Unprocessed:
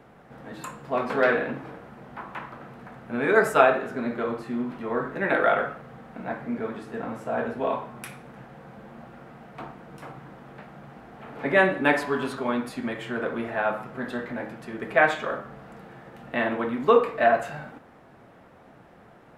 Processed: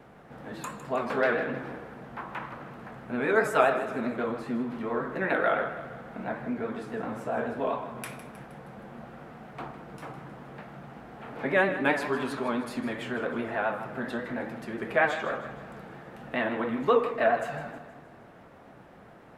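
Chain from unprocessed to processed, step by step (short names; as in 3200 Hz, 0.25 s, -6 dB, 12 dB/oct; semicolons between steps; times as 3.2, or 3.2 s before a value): in parallel at 0 dB: compressor, threshold -31 dBFS, peak gain reduction 17.5 dB; on the sum: vibrato 7.4 Hz 69 cents; split-band echo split 360 Hz, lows 0.218 s, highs 0.157 s, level -13 dB; gain -6 dB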